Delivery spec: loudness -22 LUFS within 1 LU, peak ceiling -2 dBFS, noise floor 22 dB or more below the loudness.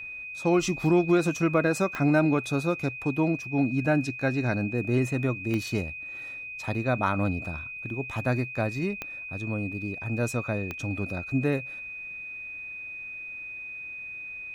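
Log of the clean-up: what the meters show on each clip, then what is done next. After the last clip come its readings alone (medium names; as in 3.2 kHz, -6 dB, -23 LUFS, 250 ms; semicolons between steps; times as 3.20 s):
clicks found 4; steady tone 2.5 kHz; tone level -36 dBFS; loudness -28.5 LUFS; peak level -11.0 dBFS; loudness target -22.0 LUFS
-> de-click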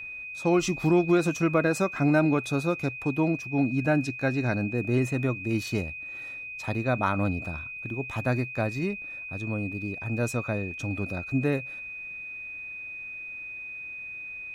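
clicks found 0; steady tone 2.5 kHz; tone level -36 dBFS
-> band-stop 2.5 kHz, Q 30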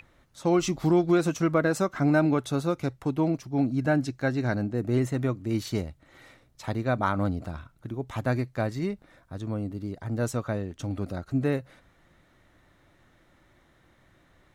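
steady tone not found; loudness -27.5 LUFS; peak level -11.0 dBFS; loudness target -22.0 LUFS
-> trim +5.5 dB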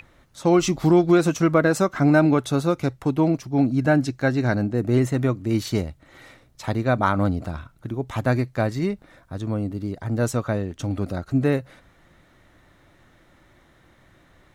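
loudness -22.5 LUFS; peak level -5.5 dBFS; noise floor -57 dBFS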